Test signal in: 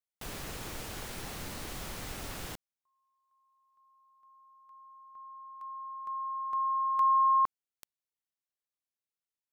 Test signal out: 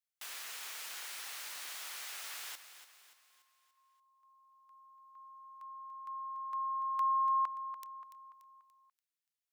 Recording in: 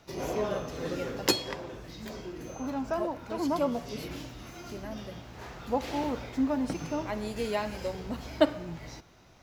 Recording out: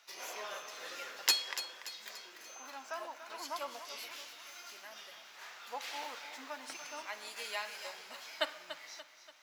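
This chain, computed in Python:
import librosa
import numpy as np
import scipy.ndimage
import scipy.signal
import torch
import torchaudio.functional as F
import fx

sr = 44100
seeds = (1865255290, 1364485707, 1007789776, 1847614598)

y = scipy.signal.sosfilt(scipy.signal.butter(2, 1400.0, 'highpass', fs=sr, output='sos'), x)
y = fx.echo_feedback(y, sr, ms=289, feedback_pct=47, wet_db=-11.5)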